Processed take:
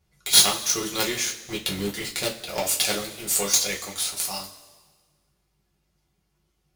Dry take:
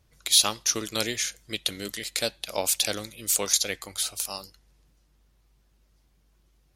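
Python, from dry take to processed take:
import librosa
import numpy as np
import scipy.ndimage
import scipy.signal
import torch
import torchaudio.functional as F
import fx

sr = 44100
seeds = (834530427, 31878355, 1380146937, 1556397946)

p1 = fx.tilt_eq(x, sr, slope=-1.5, at=(1.44, 2.59))
p2 = fx.quant_companded(p1, sr, bits=2)
p3 = p1 + (p2 * 10.0 ** (-3.5 / 20.0))
p4 = fx.rev_double_slope(p3, sr, seeds[0], early_s=0.23, late_s=1.5, knee_db=-18, drr_db=-3.5)
y = p4 * 10.0 ** (-7.5 / 20.0)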